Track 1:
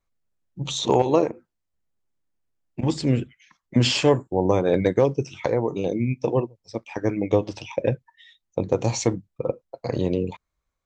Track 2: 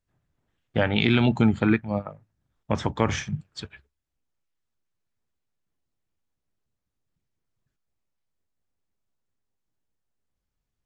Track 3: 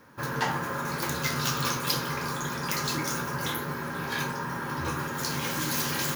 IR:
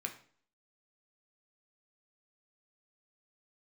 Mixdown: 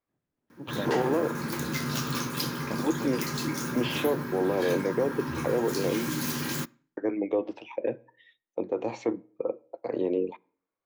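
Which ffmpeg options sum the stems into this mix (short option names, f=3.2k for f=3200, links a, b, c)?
-filter_complex "[0:a]acrossover=split=340 3000:gain=0.158 1 0.0794[a][b][c];[a][b][c]amix=inputs=3:normalize=0,volume=-6dB,asplit=3[d][e][f];[d]atrim=end=6.09,asetpts=PTS-STARTPTS,afade=t=out:st=6.086:d=0.004:c=hsin[g];[e]atrim=start=6.09:end=6.97,asetpts=PTS-STARTPTS,volume=0[h];[f]atrim=start=6.97,asetpts=PTS-STARTPTS,afade=t=in:d=0.004:c=hsin[i];[g][h][i]concat=n=3:v=0:a=1,asplit=3[j][k][l];[k]volume=-15dB[m];[1:a]volume=-10dB[n];[2:a]equalizer=f=550:t=o:w=1.8:g=-5.5,adelay=500,volume=-5dB,asplit=2[o][p];[p]volume=-14.5dB[q];[l]apad=whole_len=478821[r];[n][r]sidechaincompress=threshold=-41dB:ratio=8:attack=16:release=1300[s];[j][s]amix=inputs=2:normalize=0,lowshelf=f=130:g=-11.5,alimiter=level_in=1.5dB:limit=-24dB:level=0:latency=1:release=17,volume=-1.5dB,volume=0dB[t];[3:a]atrim=start_sample=2205[u];[m][q]amix=inputs=2:normalize=0[v];[v][u]afir=irnorm=-1:irlink=0[w];[o][t][w]amix=inputs=3:normalize=0,equalizer=f=280:t=o:w=1.7:g=11"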